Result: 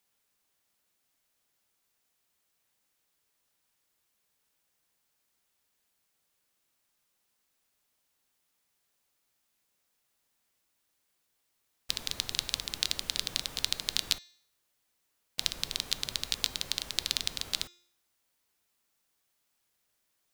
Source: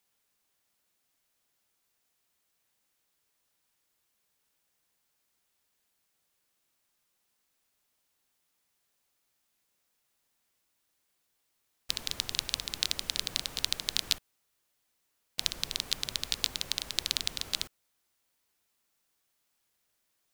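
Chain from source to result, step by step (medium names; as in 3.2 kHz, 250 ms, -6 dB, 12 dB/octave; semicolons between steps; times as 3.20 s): de-hum 351.1 Hz, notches 22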